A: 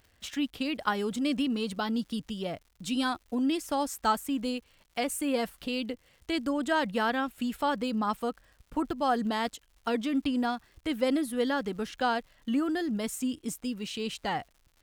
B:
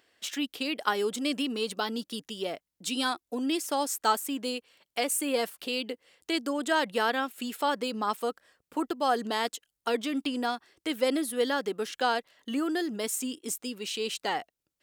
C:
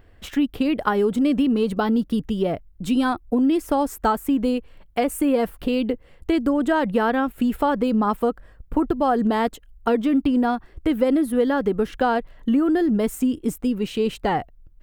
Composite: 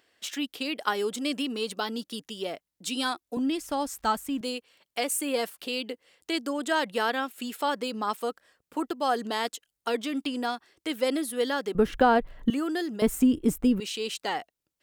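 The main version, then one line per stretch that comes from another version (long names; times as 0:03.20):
B
0:03.37–0:04.41: punch in from A
0:11.75–0:12.50: punch in from C
0:13.02–0:13.80: punch in from C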